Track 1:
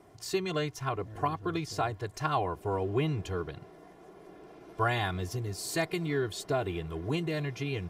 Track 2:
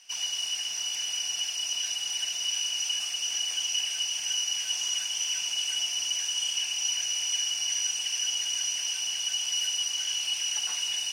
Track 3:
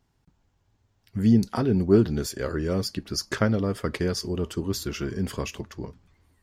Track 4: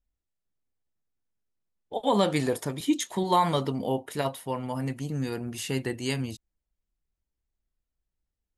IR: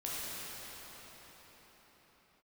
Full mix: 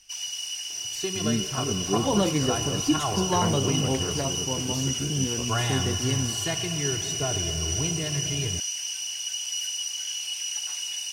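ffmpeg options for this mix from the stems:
-filter_complex "[0:a]asubboost=boost=2:cutoff=180,adelay=700,volume=-2.5dB,asplit=2[link_01][link_02];[link_02]volume=-8.5dB[link_03];[1:a]highshelf=frequency=4900:gain=9,volume=-5.5dB[link_04];[2:a]volume=-8.5dB[link_05];[3:a]lowshelf=frequency=460:gain=10.5,volume=-6.5dB[link_06];[4:a]atrim=start_sample=2205[link_07];[link_03][link_07]afir=irnorm=-1:irlink=0[link_08];[link_01][link_04][link_05][link_06][link_08]amix=inputs=5:normalize=0"

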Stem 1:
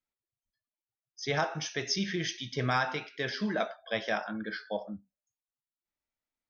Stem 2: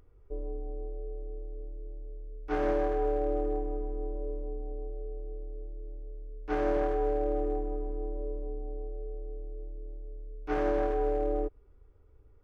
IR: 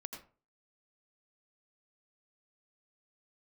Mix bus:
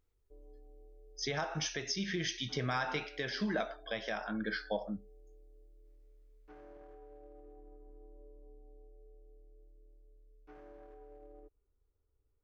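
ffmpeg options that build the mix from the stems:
-filter_complex "[0:a]acompressor=threshold=-30dB:ratio=6,volume=2dB[link_01];[1:a]alimiter=level_in=3.5dB:limit=-24dB:level=0:latency=1:release=76,volume=-3.5dB,volume=-19.5dB[link_02];[link_01][link_02]amix=inputs=2:normalize=0,alimiter=limit=-23dB:level=0:latency=1:release=471"

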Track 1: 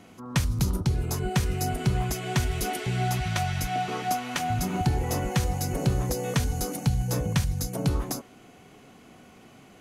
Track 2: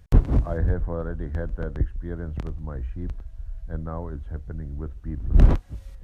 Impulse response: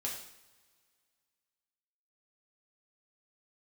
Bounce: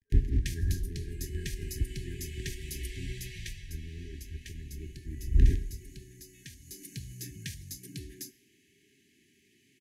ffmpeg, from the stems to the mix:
-filter_complex "[0:a]highpass=73,bass=frequency=250:gain=-5,treble=frequency=4000:gain=2,adelay=100,volume=-2.5dB,afade=type=out:start_time=3.4:duration=0.27:silence=0.398107,afade=type=in:start_time=6.61:duration=0.32:silence=0.398107,asplit=2[link_01][link_02];[link_02]volume=-16.5dB[link_03];[1:a]aeval=exprs='sgn(val(0))*max(abs(val(0))-0.00631,0)':channel_layout=same,volume=-10dB,asplit=2[link_04][link_05];[link_05]volume=-3.5dB[link_06];[2:a]atrim=start_sample=2205[link_07];[link_03][link_06]amix=inputs=2:normalize=0[link_08];[link_08][link_07]afir=irnorm=-1:irlink=0[link_09];[link_01][link_04][link_09]amix=inputs=3:normalize=0,afftfilt=real='re*(1-between(b*sr/4096,420,1600))':imag='im*(1-between(b*sr/4096,420,1600))':win_size=4096:overlap=0.75,equalizer=frequency=210:width_type=o:width=1.4:gain=-5"

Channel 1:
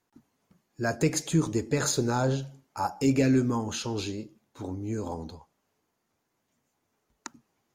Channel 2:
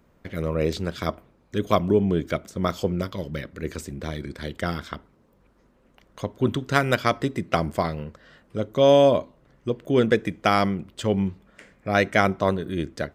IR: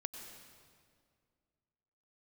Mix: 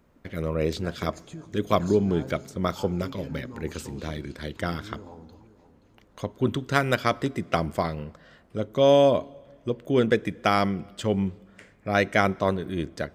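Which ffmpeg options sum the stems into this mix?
-filter_complex "[0:a]lowpass=frequency=3000:poles=1,acompressor=threshold=-33dB:ratio=3,volume=-10dB,asplit=3[link_01][link_02][link_03];[link_02]volume=-6.5dB[link_04];[link_03]volume=-12.5dB[link_05];[1:a]volume=-2.5dB,asplit=2[link_06][link_07];[link_07]volume=-19dB[link_08];[2:a]atrim=start_sample=2205[link_09];[link_04][link_08]amix=inputs=2:normalize=0[link_10];[link_10][link_09]afir=irnorm=-1:irlink=0[link_11];[link_05]aecho=0:1:526|1052|1578|2104|2630|3156|3682:1|0.49|0.24|0.118|0.0576|0.0282|0.0138[link_12];[link_01][link_06][link_11][link_12]amix=inputs=4:normalize=0"

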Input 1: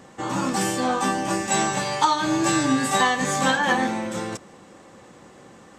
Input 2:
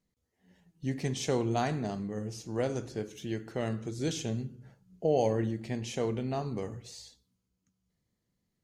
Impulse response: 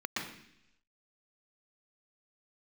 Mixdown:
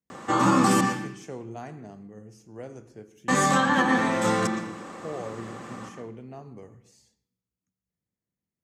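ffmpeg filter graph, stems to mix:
-filter_complex "[0:a]alimiter=limit=-14dB:level=0:latency=1:release=459,equalizer=frequency=1200:width_type=o:width=0.33:gain=7,adelay=100,volume=2.5dB,asplit=3[link_01][link_02][link_03];[link_01]atrim=end=0.81,asetpts=PTS-STARTPTS,afade=type=out:start_time=0.806:duration=0.004:curve=hsin[link_04];[link_02]atrim=start=0.81:end=3.28,asetpts=PTS-STARTPTS,volume=0[link_05];[link_03]atrim=start=3.28,asetpts=PTS-STARTPTS,afade=type=in:duration=0.004:curve=hsin[link_06];[link_04][link_05][link_06]concat=n=3:v=0:a=1,asplit=2[link_07][link_08];[link_08]volume=-7.5dB[link_09];[1:a]equalizer=frequency=3900:width_type=o:width=0.58:gain=-12,volume=-9.5dB,asplit=2[link_10][link_11];[link_11]volume=-21dB[link_12];[2:a]atrim=start_sample=2205[link_13];[link_09][link_12]amix=inputs=2:normalize=0[link_14];[link_14][link_13]afir=irnorm=-1:irlink=0[link_15];[link_07][link_10][link_15]amix=inputs=3:normalize=0,highpass=56,acrossover=split=380[link_16][link_17];[link_17]acompressor=threshold=-20dB:ratio=6[link_18];[link_16][link_18]amix=inputs=2:normalize=0"

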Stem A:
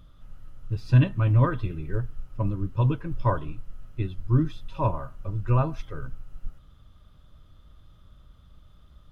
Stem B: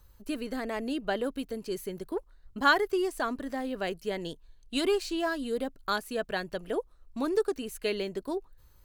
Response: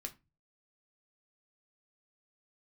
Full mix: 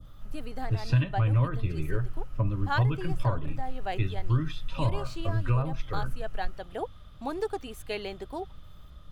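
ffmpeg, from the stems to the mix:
-filter_complex "[0:a]acrossover=split=150|690[link_01][link_02][link_03];[link_01]acompressor=threshold=-29dB:ratio=4[link_04];[link_02]acompressor=threshold=-39dB:ratio=4[link_05];[link_03]acompressor=threshold=-45dB:ratio=4[link_06];[link_04][link_05][link_06]amix=inputs=3:normalize=0,volume=1dB,asplit=3[link_07][link_08][link_09];[link_08]volume=-4.5dB[link_10];[1:a]equalizer=frequency=790:width_type=o:width=0.44:gain=14,adelay=50,volume=-6dB[link_11];[link_09]apad=whole_len=392389[link_12];[link_11][link_12]sidechaincompress=threshold=-34dB:ratio=8:attack=6.5:release=360[link_13];[2:a]atrim=start_sample=2205[link_14];[link_10][link_14]afir=irnorm=-1:irlink=0[link_15];[link_07][link_13][link_15]amix=inputs=3:normalize=0,adynamicequalizer=threshold=0.00398:dfrequency=2400:dqfactor=0.78:tfrequency=2400:tqfactor=0.78:attack=5:release=100:ratio=0.375:range=2.5:mode=boostabove:tftype=bell"

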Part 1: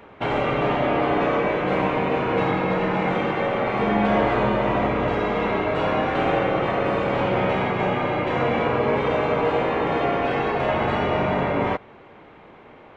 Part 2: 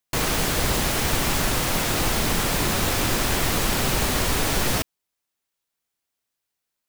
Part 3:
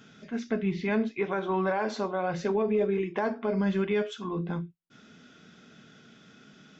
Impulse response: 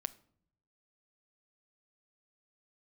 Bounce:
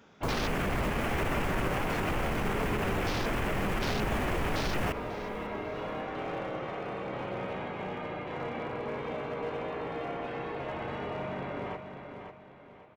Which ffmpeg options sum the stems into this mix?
-filter_complex "[0:a]asoftclip=type=hard:threshold=-15dB,volume=-15dB,asplit=2[link_01][link_02];[link_02]volume=-7.5dB[link_03];[1:a]afwtdn=0.0355,adelay=100,volume=-2dB,asplit=2[link_04][link_05];[link_05]volume=-21.5dB[link_06];[2:a]volume=-8dB[link_07];[link_03][link_06]amix=inputs=2:normalize=0,aecho=0:1:545|1090|1635|2180|2725:1|0.36|0.13|0.0467|0.0168[link_08];[link_01][link_04][link_07][link_08]amix=inputs=4:normalize=0,alimiter=limit=-21.5dB:level=0:latency=1:release=39"

